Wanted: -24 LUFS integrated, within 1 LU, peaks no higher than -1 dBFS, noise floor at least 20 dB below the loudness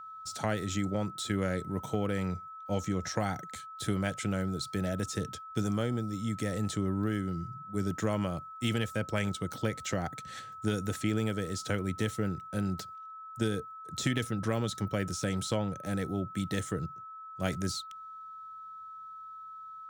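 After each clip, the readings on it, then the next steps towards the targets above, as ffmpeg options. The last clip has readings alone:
steady tone 1300 Hz; tone level -43 dBFS; loudness -33.5 LUFS; peak -14.5 dBFS; loudness target -24.0 LUFS
-> -af "bandreject=f=1.3k:w=30"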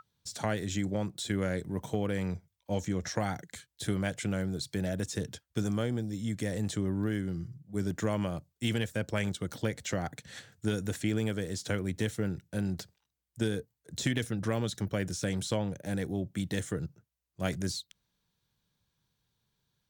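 steady tone none; loudness -34.0 LUFS; peak -15.0 dBFS; loudness target -24.0 LUFS
-> -af "volume=10dB"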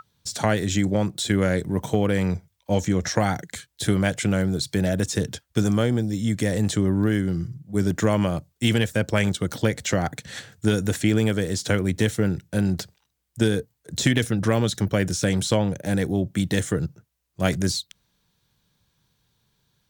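loudness -24.0 LUFS; peak -5.0 dBFS; noise floor -73 dBFS

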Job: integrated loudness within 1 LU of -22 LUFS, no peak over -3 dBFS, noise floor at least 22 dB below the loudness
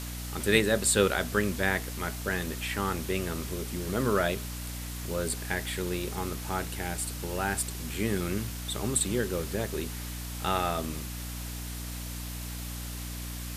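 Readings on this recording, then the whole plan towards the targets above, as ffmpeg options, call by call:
hum 60 Hz; harmonics up to 300 Hz; hum level -36 dBFS; noise floor -38 dBFS; noise floor target -53 dBFS; loudness -30.5 LUFS; peak -8.0 dBFS; loudness target -22.0 LUFS
-> -af "bandreject=f=60:t=h:w=6,bandreject=f=120:t=h:w=6,bandreject=f=180:t=h:w=6,bandreject=f=240:t=h:w=6,bandreject=f=300:t=h:w=6"
-af "afftdn=nr=15:nf=-38"
-af "volume=8.5dB,alimiter=limit=-3dB:level=0:latency=1"

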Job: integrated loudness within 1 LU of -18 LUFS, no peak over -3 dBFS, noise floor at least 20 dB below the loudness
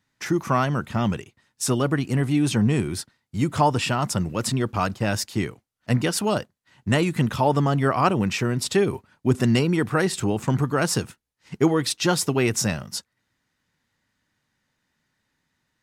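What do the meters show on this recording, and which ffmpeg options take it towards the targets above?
loudness -23.0 LUFS; peak -6.0 dBFS; loudness target -18.0 LUFS
-> -af "volume=5dB,alimiter=limit=-3dB:level=0:latency=1"

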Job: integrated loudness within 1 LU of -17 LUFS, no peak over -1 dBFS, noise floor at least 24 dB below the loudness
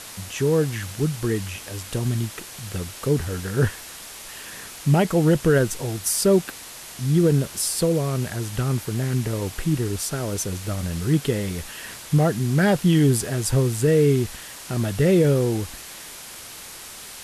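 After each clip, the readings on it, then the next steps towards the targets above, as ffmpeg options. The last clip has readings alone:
noise floor -40 dBFS; noise floor target -47 dBFS; loudness -22.5 LUFS; peak -8.5 dBFS; loudness target -17.0 LUFS
-> -af "afftdn=nr=7:nf=-40"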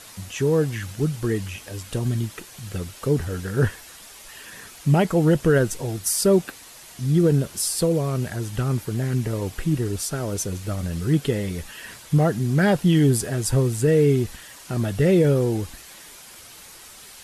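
noise floor -44 dBFS; noise floor target -47 dBFS
-> -af "afftdn=nr=6:nf=-44"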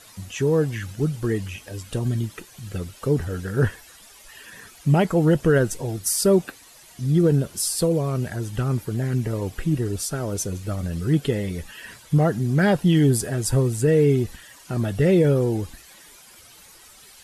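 noise floor -49 dBFS; loudness -22.5 LUFS; peak -9.0 dBFS; loudness target -17.0 LUFS
-> -af "volume=5.5dB"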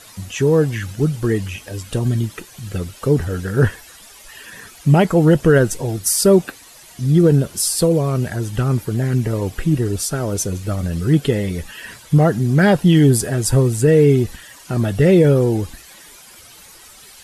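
loudness -17.0 LUFS; peak -3.5 dBFS; noise floor -43 dBFS

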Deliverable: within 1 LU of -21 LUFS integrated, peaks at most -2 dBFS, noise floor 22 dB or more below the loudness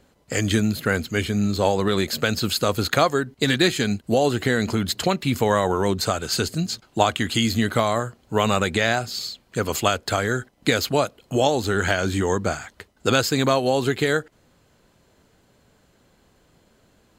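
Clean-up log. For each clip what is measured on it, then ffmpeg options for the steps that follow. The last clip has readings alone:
loudness -22.5 LUFS; peak -1.5 dBFS; loudness target -21.0 LUFS
-> -af "volume=1.5dB,alimiter=limit=-2dB:level=0:latency=1"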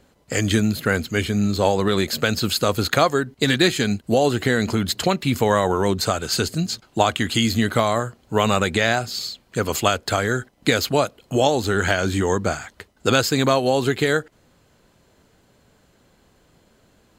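loudness -21.0 LUFS; peak -2.0 dBFS; noise floor -59 dBFS

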